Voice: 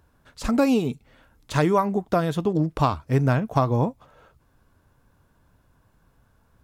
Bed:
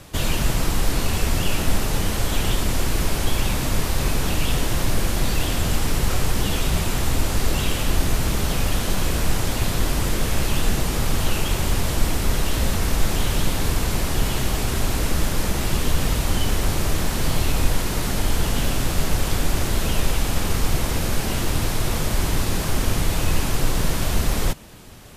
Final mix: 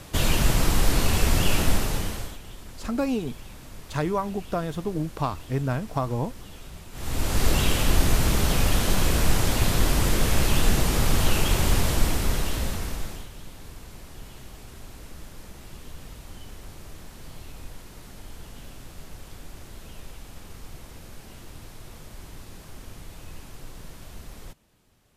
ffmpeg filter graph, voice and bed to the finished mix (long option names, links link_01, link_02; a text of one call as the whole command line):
ffmpeg -i stem1.wav -i stem2.wav -filter_complex "[0:a]adelay=2400,volume=-6dB[link_01];[1:a]volume=21dB,afade=type=out:start_time=1.59:duration=0.79:silence=0.0891251,afade=type=in:start_time=6.92:duration=0.55:silence=0.0891251,afade=type=out:start_time=11.74:duration=1.55:silence=0.0891251[link_02];[link_01][link_02]amix=inputs=2:normalize=0" out.wav